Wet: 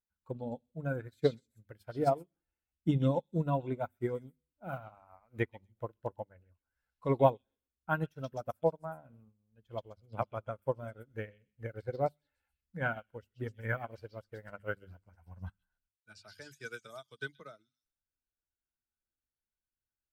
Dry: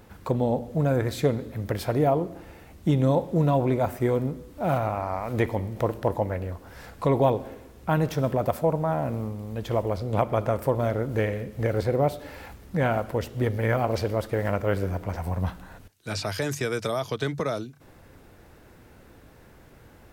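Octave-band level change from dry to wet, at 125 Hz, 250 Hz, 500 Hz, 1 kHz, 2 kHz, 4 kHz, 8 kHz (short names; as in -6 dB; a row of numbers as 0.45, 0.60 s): -12.0 dB, -11.5 dB, -10.5 dB, -9.5 dB, -7.0 dB, -14.5 dB, under -20 dB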